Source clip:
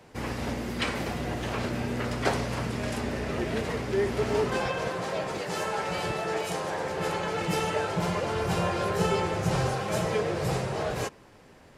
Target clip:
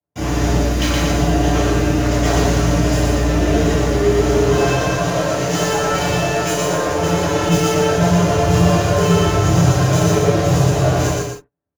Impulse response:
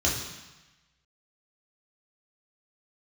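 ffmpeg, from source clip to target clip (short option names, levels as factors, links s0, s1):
-filter_complex "[0:a]agate=range=0.00631:threshold=0.0112:ratio=16:detection=peak,highshelf=f=3900:g=10.5,aecho=1:1:6.9:0.55,asplit=2[s0][s1];[s1]alimiter=limit=0.119:level=0:latency=1:release=39,volume=1.26[s2];[s0][s2]amix=inputs=2:normalize=0,asoftclip=type=hard:threshold=0.158,acrossover=split=580|1800[s3][s4][s5];[s5]acrusher=bits=4:dc=4:mix=0:aa=0.000001[s6];[s3][s4][s6]amix=inputs=3:normalize=0,aecho=1:1:119.5|236.2:0.794|0.398[s7];[1:a]atrim=start_sample=2205,atrim=end_sample=3969[s8];[s7][s8]afir=irnorm=-1:irlink=0,volume=0.335"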